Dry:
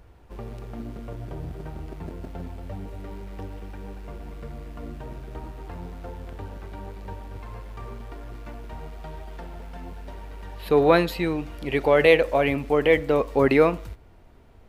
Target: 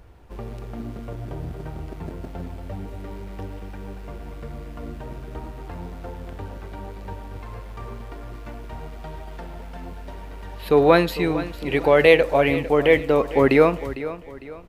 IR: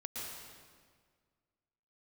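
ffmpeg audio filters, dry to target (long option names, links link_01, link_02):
-af "aecho=1:1:453|906|1359:0.188|0.0697|0.0258,volume=2.5dB"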